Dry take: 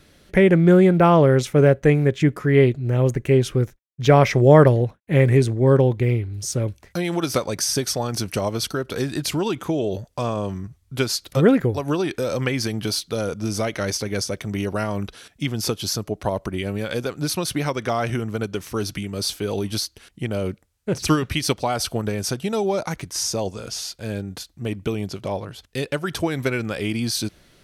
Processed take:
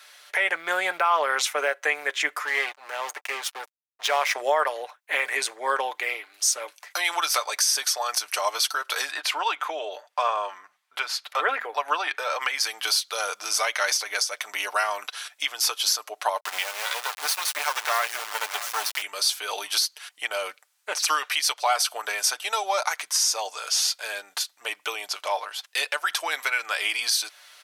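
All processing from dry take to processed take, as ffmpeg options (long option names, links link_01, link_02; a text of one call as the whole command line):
ffmpeg -i in.wav -filter_complex "[0:a]asettb=1/sr,asplit=3[link_01][link_02][link_03];[link_01]atrim=end=2.454[link_04];[link_02]atrim=start=2.45:end=4.36,asetpts=PTS-STARTPTS,afade=type=in:duration=0.004:curve=qsin,afade=type=out:start_time=1.906:duration=0.004:curve=qsin,equalizer=frequency=79:width=0.58:gain=-4,acompressor=threshold=-25dB:ratio=1.5:attack=3.2:release=140:knee=1:detection=peak,aeval=exprs='sgn(val(0))*max(abs(val(0))-0.0178,0)':channel_layout=same[link_05];[link_03]atrim=start=4.356[link_06];[link_04][link_05]acrossfade=duration=0.004:curve1=hsin:curve2=qsin[link_07];[link_07][link_06]acrossfade=duration=0.004:curve1=qsin:curve2=hsin,asettb=1/sr,asplit=3[link_08][link_09][link_10];[link_08]atrim=end=9.114[link_11];[link_09]atrim=start=9.11:end=12.41,asetpts=PTS-STARTPTS,afade=type=in:duration=0.004:curve=qsin,afade=type=out:start_time=3.296:duration=0.004:curve=qsin,bass=frequency=250:gain=-5,treble=frequency=4000:gain=-14,bandreject=frequency=50:width_type=h:width=6,bandreject=frequency=100:width_type=h:width=6,bandreject=frequency=150:width_type=h:width=6,bandreject=frequency=200:width_type=h:width=6,bandreject=frequency=250:width_type=h:width=6[link_12];[link_10]atrim=start=12.406[link_13];[link_11][link_12]acrossfade=duration=0.004:curve1=hsin:curve2=qsin[link_14];[link_14][link_13]acrossfade=duration=0.004:curve1=qsin:curve2=hsin,asettb=1/sr,asplit=3[link_15][link_16][link_17];[link_15]atrim=end=16.404[link_18];[link_16]atrim=start=16.4:end=19.02,asetpts=PTS-STARTPTS,afade=type=in:duration=0.004:curve=qsin,afade=type=out:start_time=2.616:duration=0.004:curve=qsin,highpass=frequency=50:poles=1,aecho=1:1:639:0.141,atrim=end_sample=115542,acrusher=bits=3:dc=4:mix=0:aa=0.000001[link_19];[link_17]atrim=start=19.016[link_20];[link_18][link_19]acrossfade=duration=0.004:curve1=hsin:curve2=qsin[link_21];[link_21][link_20]acrossfade=duration=0.004:curve1=qsin:curve2=hsin,highpass=frequency=820:width=0.5412,highpass=frequency=820:width=1.3066,aecho=1:1:6.7:0.4,alimiter=limit=-19dB:level=0:latency=1:release=271,volume=7.5dB" out.wav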